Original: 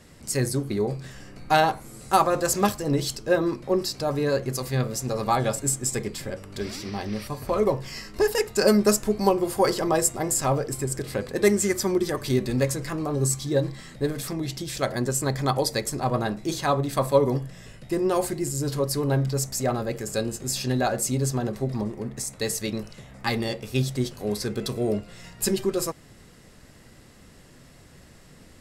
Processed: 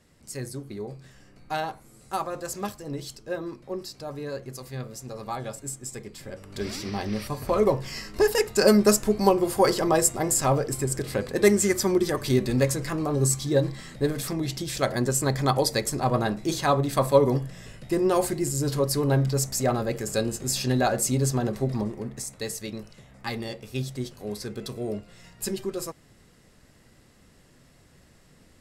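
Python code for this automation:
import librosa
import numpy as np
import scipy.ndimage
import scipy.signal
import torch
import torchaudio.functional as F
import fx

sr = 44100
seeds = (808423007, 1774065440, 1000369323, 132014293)

y = fx.gain(x, sr, db=fx.line((6.09, -10.0), (6.69, 1.0), (21.7, 1.0), (22.59, -6.0)))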